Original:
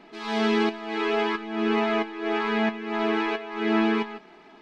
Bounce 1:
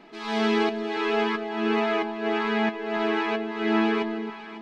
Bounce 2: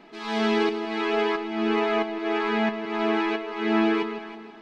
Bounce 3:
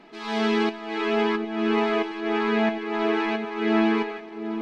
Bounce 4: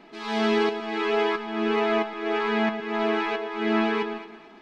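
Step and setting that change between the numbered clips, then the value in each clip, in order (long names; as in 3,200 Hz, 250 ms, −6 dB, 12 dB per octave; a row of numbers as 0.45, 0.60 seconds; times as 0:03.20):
delay that swaps between a low-pass and a high-pass, delay time: 274, 160, 755, 110 milliseconds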